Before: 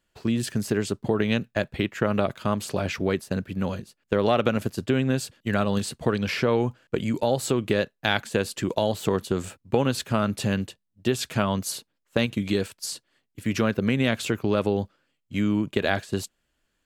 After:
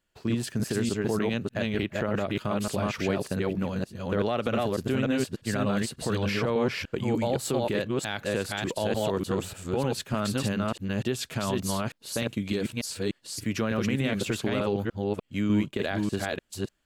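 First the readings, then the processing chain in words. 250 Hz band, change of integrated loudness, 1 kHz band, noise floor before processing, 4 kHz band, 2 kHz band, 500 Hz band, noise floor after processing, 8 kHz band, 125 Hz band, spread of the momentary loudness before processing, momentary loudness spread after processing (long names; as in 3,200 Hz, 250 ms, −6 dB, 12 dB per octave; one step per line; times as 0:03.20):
−2.0 dB, −3.0 dB, −3.5 dB, −77 dBFS, −3.0 dB, −3.5 dB, −3.0 dB, −64 dBFS, −1.5 dB, −2.5 dB, 7 LU, 5 LU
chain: delay that plays each chunk backwards 298 ms, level −1 dB
brickwall limiter −12.5 dBFS, peak gain reduction 9.5 dB
level −3.5 dB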